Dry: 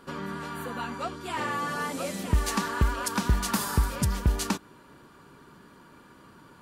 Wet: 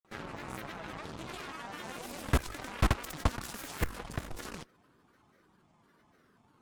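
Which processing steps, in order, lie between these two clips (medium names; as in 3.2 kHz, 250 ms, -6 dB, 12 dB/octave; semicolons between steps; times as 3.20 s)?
level held to a coarse grid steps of 21 dB; Chebyshev shaper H 8 -6 dB, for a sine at -15 dBFS; granulator 100 ms, pitch spread up and down by 7 st; trim -2 dB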